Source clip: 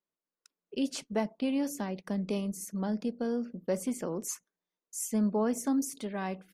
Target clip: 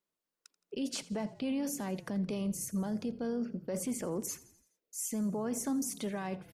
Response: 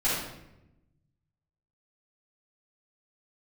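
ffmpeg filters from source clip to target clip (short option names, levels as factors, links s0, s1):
-filter_complex "[0:a]asettb=1/sr,asplit=3[s0][s1][s2];[s0]atrim=end=4.264[s3];[s1]atrim=start=4.26:end=4.99,asetpts=PTS-STARTPTS,afade=t=in:d=0.004:c=qsin,afade=t=out:st=0.726:d=0.004:c=qsin,equalizer=f=500:t=o:w=1:g=9,equalizer=f=1000:t=o:w=1:g=-9,equalizer=f=8000:t=o:w=1:g=-8[s4];[s2]atrim=start=4.986[s5];[s3][s4]acrossfade=d=0.004:c1=hsin:c2=qsin[s6];[s6][s5]acrossfade=d=0.004:c1=qsin:c2=hsin,alimiter=level_in=2:limit=0.0631:level=0:latency=1:release=10,volume=0.501,asplit=6[s7][s8][s9][s10][s11][s12];[s8]adelay=84,afreqshift=-33,volume=0.112[s13];[s9]adelay=168,afreqshift=-66,volume=0.0617[s14];[s10]adelay=252,afreqshift=-99,volume=0.0339[s15];[s11]adelay=336,afreqshift=-132,volume=0.0186[s16];[s12]adelay=420,afreqshift=-165,volume=0.0102[s17];[s7][s13][s14][s15][s16][s17]amix=inputs=6:normalize=0,volume=1.33"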